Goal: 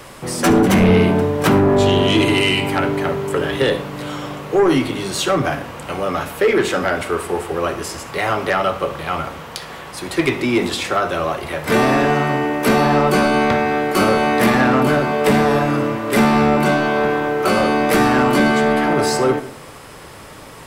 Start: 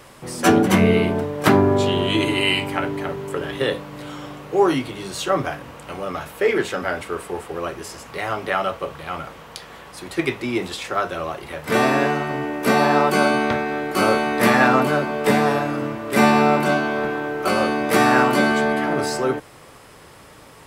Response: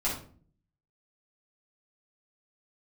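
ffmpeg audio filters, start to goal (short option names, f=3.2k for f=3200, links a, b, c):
-filter_complex "[0:a]acrossover=split=390[a][b];[b]acompressor=threshold=-20dB:ratio=6[c];[a][c]amix=inputs=2:normalize=0,aeval=exprs='0.562*(cos(1*acos(clip(val(0)/0.562,-1,1)))-cos(1*PI/2))+0.141*(cos(5*acos(clip(val(0)/0.562,-1,1)))-cos(5*PI/2))':c=same,asplit=2[d][e];[1:a]atrim=start_sample=2205,adelay=55[f];[e][f]afir=irnorm=-1:irlink=0,volume=-20dB[g];[d][g]amix=inputs=2:normalize=0"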